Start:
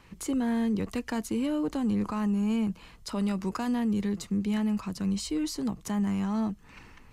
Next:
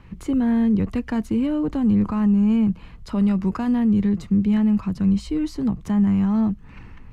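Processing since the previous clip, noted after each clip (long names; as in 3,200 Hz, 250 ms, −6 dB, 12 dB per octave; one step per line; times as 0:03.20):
bass and treble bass +10 dB, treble −12 dB
level +3 dB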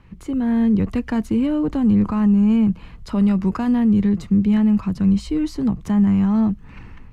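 automatic gain control gain up to 5.5 dB
level −3 dB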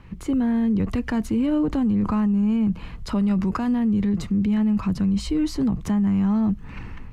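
brickwall limiter −19.5 dBFS, peak gain reduction 10 dB
level +3.5 dB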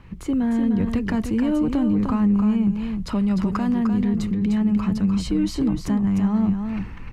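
single-tap delay 302 ms −6.5 dB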